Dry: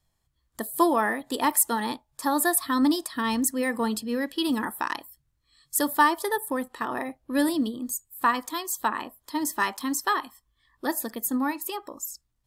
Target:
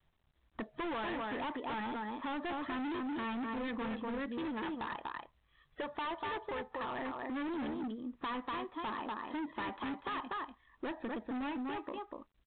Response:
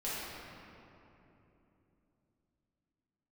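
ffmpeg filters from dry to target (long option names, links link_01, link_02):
-filter_complex "[0:a]lowpass=2200,asettb=1/sr,asplit=3[link_01][link_02][link_03];[link_01]atrim=end=4.504[link_04];[link_02]atrim=start=4.5:end=6.99,asetpts=PTS-STARTPTS,afade=type=in:duration=0.004:curve=qsin,afade=type=out:start_time=2.486:duration=0.004:curve=qsin,equalizer=frequency=270:width=2.6:gain=-12.5[link_05];[link_03]atrim=start=6.986[link_06];[link_04][link_05]acrossfade=duration=0.004:curve1=hsin:curve2=qsin[link_07];[link_07][link_06]acrossfade=duration=0.004:curve1=qsin:curve2=hsin,aecho=1:1:243:0.447,asoftclip=type=tanh:threshold=-10.5dB,equalizer=frequency=120:width=6.3:gain=-12.5,volume=32dB,asoftclip=hard,volume=-32dB,acompressor=threshold=-41dB:ratio=4,volume=2.5dB" -ar 8000 -c:a adpcm_g726 -b:a 32k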